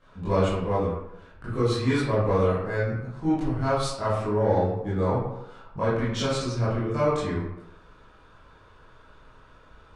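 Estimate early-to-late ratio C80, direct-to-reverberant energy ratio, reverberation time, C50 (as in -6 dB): 3.5 dB, -12.0 dB, 0.85 s, -0.5 dB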